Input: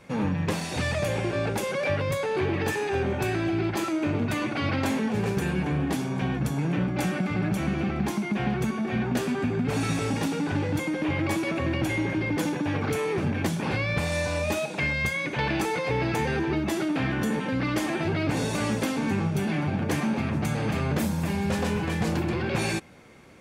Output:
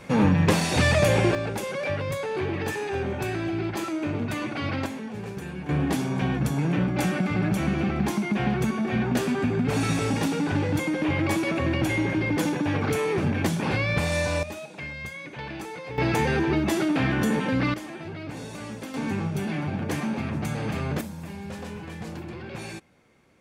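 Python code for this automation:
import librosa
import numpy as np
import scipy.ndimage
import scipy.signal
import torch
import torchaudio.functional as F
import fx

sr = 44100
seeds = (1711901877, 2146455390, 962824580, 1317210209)

y = fx.gain(x, sr, db=fx.steps((0.0, 7.0), (1.35, -2.0), (4.86, -8.5), (5.69, 2.0), (14.43, -9.5), (15.98, 3.0), (17.74, -10.0), (18.94, -2.0), (21.01, -10.0)))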